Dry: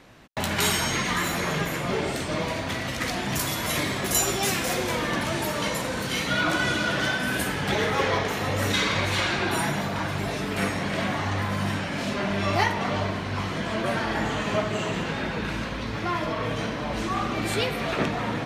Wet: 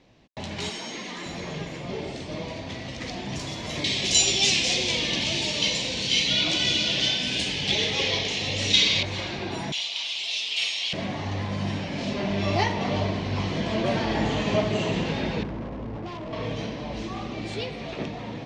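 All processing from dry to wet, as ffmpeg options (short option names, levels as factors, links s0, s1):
-filter_complex "[0:a]asettb=1/sr,asplit=3[s0][s1][s2];[s0]atrim=end=0.694[s3];[s1]atrim=start=0.69:end=1.26,asetpts=PTS-STARTPTS,afade=t=in:d=0.004:c=qsin,afade=t=out:st=0.566:d=0.004:c=qsin,highpass=f=200:w=0.5412,highpass=f=200:w=1.3066,volume=11.9,asoftclip=hard,volume=0.0841[s4];[s2]atrim=start=1.256[s5];[s3][s4]acrossfade=d=0.004:c1=hsin:c2=qsin[s6];[s6][s5]acrossfade=d=0.004:c1=qsin:c2=hsin,asettb=1/sr,asplit=3[s7][s8][s9];[s7]atrim=end=3.844[s10];[s8]atrim=start=3.84:end=9.03,asetpts=PTS-STARTPTS,afade=t=in:d=0.004:c=qsin,afade=t=out:st=5.186:d=0.004:c=qsin,lowpass=f=9500:w=0.5412,lowpass=f=9500:w=1.3066,highshelf=f=2000:t=q:w=1.5:g=11.5[s11];[s9]atrim=start=9.026[s12];[s10][s11]acrossfade=d=0.004:c1=hsin:c2=qsin[s13];[s13][s12]acrossfade=d=0.004:c1=qsin:c2=hsin,asettb=1/sr,asplit=3[s14][s15][s16];[s14]atrim=end=9.724[s17];[s15]atrim=start=9.72:end=10.93,asetpts=PTS-STARTPTS,afade=t=in:d=0.004:c=qsin,afade=t=out:st=1.206:d=0.004:c=qsin,highpass=1300,highshelf=f=2200:t=q:w=3:g=11[s18];[s16]atrim=start=10.926[s19];[s17][s18]acrossfade=d=0.004:c1=hsin:c2=qsin[s20];[s20][s19]acrossfade=d=0.004:c1=qsin:c2=hsin,asettb=1/sr,asplit=3[s21][s22][s23];[s21]atrim=end=15.434[s24];[s22]atrim=start=15.43:end=16.33,asetpts=PTS-STARTPTS,afade=t=in:d=0.004:c=qsin,afade=t=out:st=0.896:d=0.004:c=qsin,lowpass=f=1400:w=0.5412,lowpass=f=1400:w=1.3066,bandreject=f=50:t=h:w=6,bandreject=f=100:t=h:w=6,bandreject=f=150:t=h:w=6,bandreject=f=200:t=h:w=6,asoftclip=type=hard:threshold=0.0266[s25];[s23]atrim=start=16.326[s26];[s24][s25]acrossfade=d=0.004:c1=hsin:c2=qsin[s27];[s27][s26]acrossfade=d=0.004:c1=qsin:c2=hsin,lowpass=f=6100:w=0.5412,lowpass=f=6100:w=1.3066,equalizer=f=1400:w=1.7:g=-12,dynaudnorm=f=270:g=21:m=3.76,volume=0.531"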